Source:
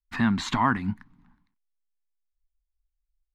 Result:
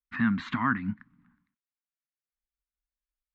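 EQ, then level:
high-pass filter 240 Hz 6 dB per octave
low-pass filter 1,900 Hz 12 dB per octave
flat-topped bell 590 Hz −14 dB
+1.5 dB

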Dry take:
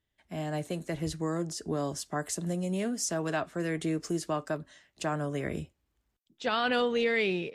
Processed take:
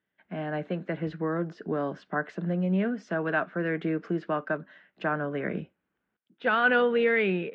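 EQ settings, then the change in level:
loudspeaker in its box 190–2,800 Hz, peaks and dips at 190 Hz +9 dB, 490 Hz +3 dB, 1,500 Hz +9 dB
+1.5 dB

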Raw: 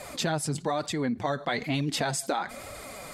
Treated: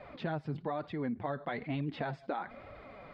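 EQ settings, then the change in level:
low-pass filter 4,100 Hz 12 dB per octave
high-frequency loss of the air 380 metres
−6.0 dB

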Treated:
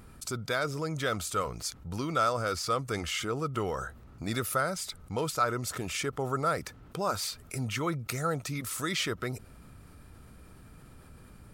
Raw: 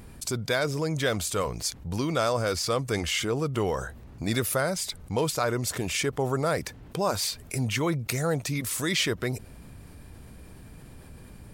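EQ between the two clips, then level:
parametric band 1,300 Hz +12.5 dB 0.22 octaves
−5.5 dB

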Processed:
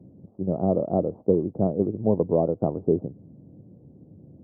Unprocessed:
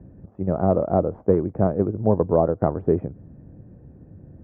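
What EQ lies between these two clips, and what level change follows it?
Gaussian smoothing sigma 11 samples
high-pass filter 140 Hz 12 dB per octave
0.0 dB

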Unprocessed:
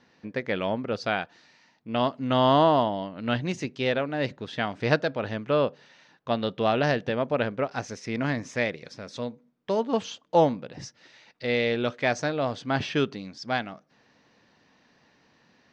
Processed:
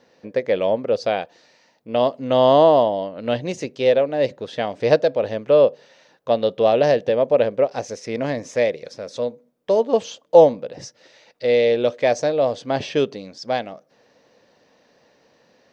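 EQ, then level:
high-shelf EQ 4,900 Hz +10.5 dB
dynamic equaliser 1,400 Hz, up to −7 dB, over −45 dBFS, Q 3.9
parametric band 530 Hz +14 dB 0.94 octaves
−1.5 dB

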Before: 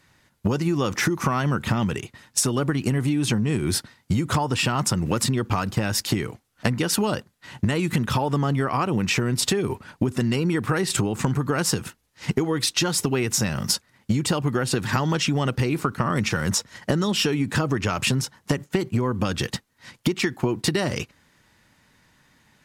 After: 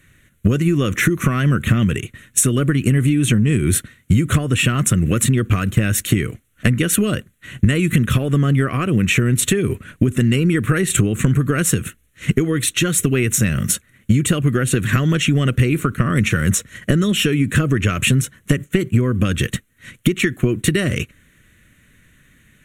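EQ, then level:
low-shelf EQ 63 Hz +11.5 dB
parametric band 8,100 Hz +5.5 dB 1.6 octaves
phaser with its sweep stopped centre 2,100 Hz, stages 4
+6.5 dB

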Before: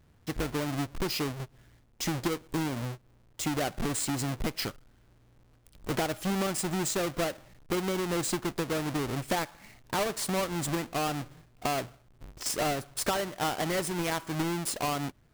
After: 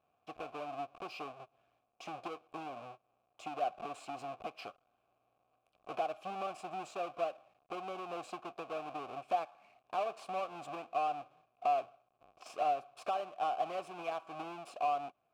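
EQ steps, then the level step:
formant filter a
+3.0 dB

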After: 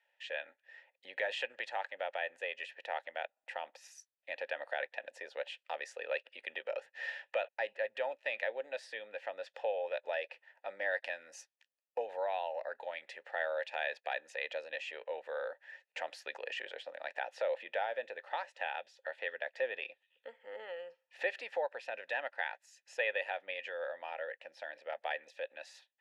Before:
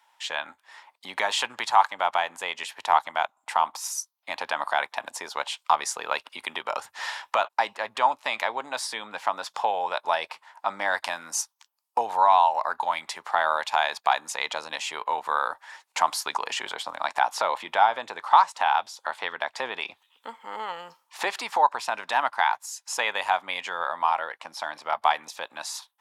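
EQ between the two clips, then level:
formant filter e
+2.0 dB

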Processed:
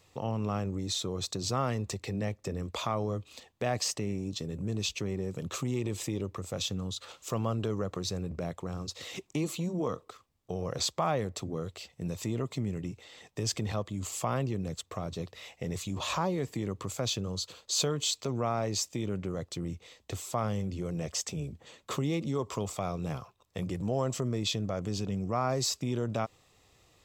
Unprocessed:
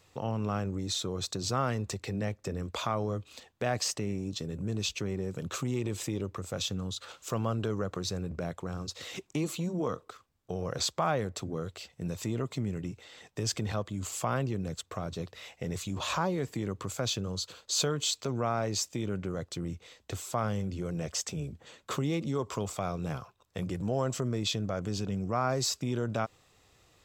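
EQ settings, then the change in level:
parametric band 1,500 Hz −7 dB 0.25 octaves
0.0 dB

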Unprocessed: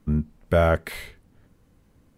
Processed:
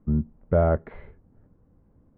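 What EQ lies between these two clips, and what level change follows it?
low-pass filter 1,000 Hz 12 dB per octave
high-frequency loss of the air 300 metres
0.0 dB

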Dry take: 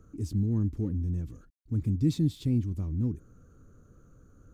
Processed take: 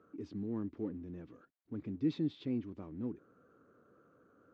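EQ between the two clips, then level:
band-pass filter 390–3,200 Hz
high-frequency loss of the air 160 metres
+2.0 dB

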